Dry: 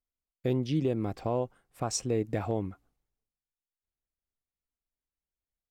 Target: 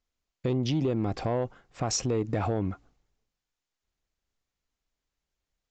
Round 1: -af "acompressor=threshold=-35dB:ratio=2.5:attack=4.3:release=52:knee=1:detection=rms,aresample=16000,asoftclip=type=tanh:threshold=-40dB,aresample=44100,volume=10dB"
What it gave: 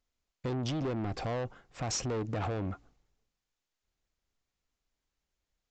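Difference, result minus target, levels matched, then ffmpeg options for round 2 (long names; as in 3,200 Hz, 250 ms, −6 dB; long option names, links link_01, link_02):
soft clipping: distortion +12 dB
-af "acompressor=threshold=-35dB:ratio=2.5:attack=4.3:release=52:knee=1:detection=rms,aresample=16000,asoftclip=type=tanh:threshold=-29dB,aresample=44100,volume=10dB"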